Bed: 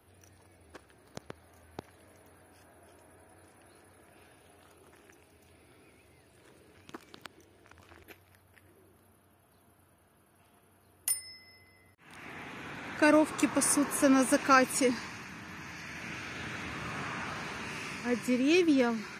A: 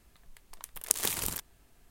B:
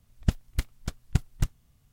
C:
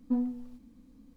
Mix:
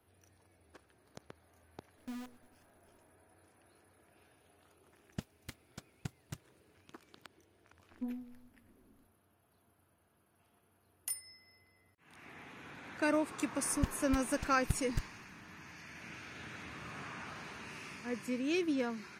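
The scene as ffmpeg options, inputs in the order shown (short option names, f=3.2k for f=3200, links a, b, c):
-filter_complex "[3:a]asplit=2[a][b];[2:a]asplit=2[c][d];[0:a]volume=-8dB[e];[a]acrusher=bits=6:dc=4:mix=0:aa=0.000001[f];[c]highpass=160[g];[f]atrim=end=1.16,asetpts=PTS-STARTPTS,volume=-16dB,afade=t=in:d=0.004:c=hsin,afade=t=out:st=1.156:d=0.004:c=hsin,adelay=1970[h];[g]atrim=end=1.92,asetpts=PTS-STARTPTS,volume=-11.5dB,afade=t=in:d=0.004:c=hsin,afade=t=out:st=1.916:d=0.004:c=hsin,adelay=4900[i];[b]atrim=end=1.16,asetpts=PTS-STARTPTS,volume=-11.5dB,afade=t=in:d=0.004:c=hsin,afade=t=out:st=1.156:d=0.004:c=hsin,adelay=7910[j];[d]atrim=end=1.92,asetpts=PTS-STARTPTS,volume=-10dB,afade=t=in:d=0.004:c=hsin,afade=t=out:st=1.916:d=0.004:c=hsin,adelay=13550[k];[e][h][i][j][k]amix=inputs=5:normalize=0"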